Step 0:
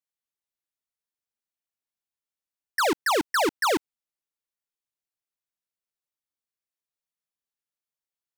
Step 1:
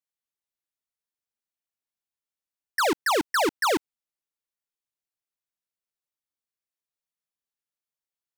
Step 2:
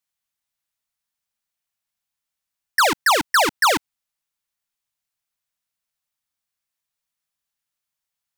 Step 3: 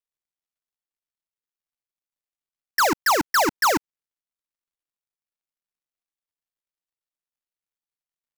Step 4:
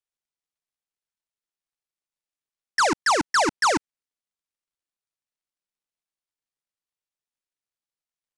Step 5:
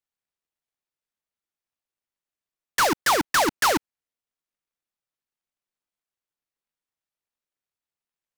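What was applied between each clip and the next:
no processing that can be heard
parametric band 380 Hz −12.5 dB 0.94 octaves; level +8.5 dB
gap after every zero crossing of 0.16 ms; level +1.5 dB
elliptic low-pass filter 10,000 Hz, stop band 40 dB
short delay modulated by noise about 3,700 Hz, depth 0.049 ms

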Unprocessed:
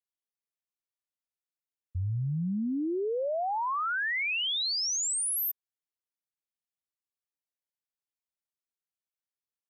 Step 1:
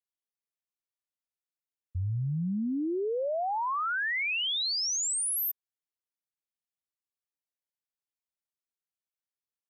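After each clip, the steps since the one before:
no processing that can be heard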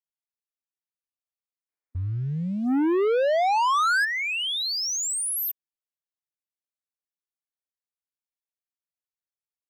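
gain on a spectral selection 0:01.69–0:04.05, 240–2,500 Hz +12 dB
leveller curve on the samples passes 2
level −4.5 dB

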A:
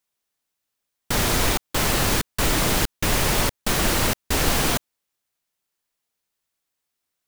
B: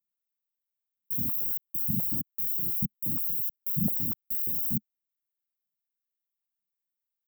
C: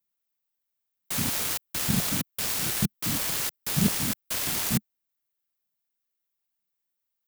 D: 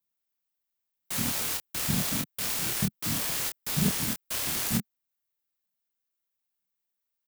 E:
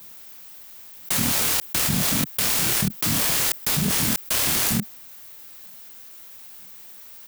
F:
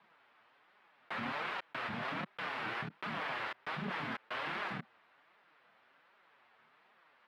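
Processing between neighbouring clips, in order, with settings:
inverse Chebyshev band-stop filter 760–4,800 Hz, stop band 80 dB; noise reduction from a noise print of the clip's start 6 dB; high-pass on a step sequencer 8.5 Hz 210–1,600 Hz; level +4 dB
phase distortion by the signal itself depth 0.56 ms; level +5.5 dB
double-tracking delay 26 ms −4.5 dB; level −3 dB
envelope flattener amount 100%
high-frequency loss of the air 410 metres; flanger 1.3 Hz, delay 4.7 ms, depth 4.7 ms, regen −2%; resonant band-pass 1,300 Hz, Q 0.85

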